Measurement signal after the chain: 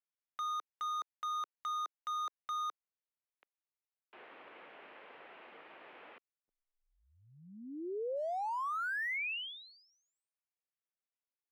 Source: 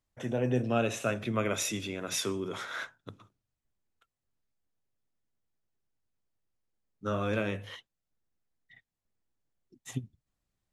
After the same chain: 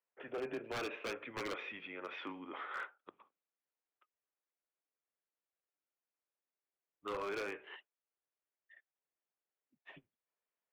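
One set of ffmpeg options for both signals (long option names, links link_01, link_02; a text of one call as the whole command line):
ffmpeg -i in.wav -af "highpass=frequency=490:width_type=q:width=0.5412,highpass=frequency=490:width_type=q:width=1.307,lowpass=frequency=2900:width_type=q:width=0.5176,lowpass=frequency=2900:width_type=q:width=0.7071,lowpass=frequency=2900:width_type=q:width=1.932,afreqshift=-110,aeval=exprs='0.0335*(abs(mod(val(0)/0.0335+3,4)-2)-1)':channel_layout=same,volume=-4dB" out.wav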